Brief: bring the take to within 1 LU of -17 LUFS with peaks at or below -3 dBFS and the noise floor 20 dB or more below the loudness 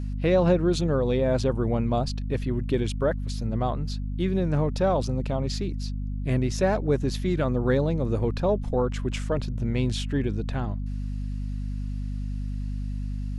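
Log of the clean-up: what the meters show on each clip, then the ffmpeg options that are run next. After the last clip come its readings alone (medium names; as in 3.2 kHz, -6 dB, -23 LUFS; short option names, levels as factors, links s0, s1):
hum 50 Hz; highest harmonic 250 Hz; hum level -28 dBFS; loudness -27.0 LUFS; peak level -9.5 dBFS; loudness target -17.0 LUFS
-> -af "bandreject=f=50:t=h:w=6,bandreject=f=100:t=h:w=6,bandreject=f=150:t=h:w=6,bandreject=f=200:t=h:w=6,bandreject=f=250:t=h:w=6"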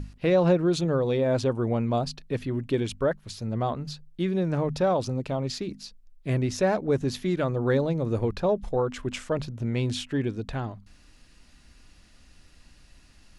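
hum not found; loudness -27.0 LUFS; peak level -10.5 dBFS; loudness target -17.0 LUFS
-> -af "volume=3.16,alimiter=limit=0.708:level=0:latency=1"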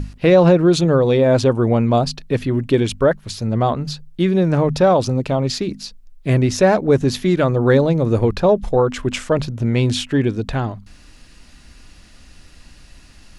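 loudness -17.0 LUFS; peak level -3.0 dBFS; noise floor -46 dBFS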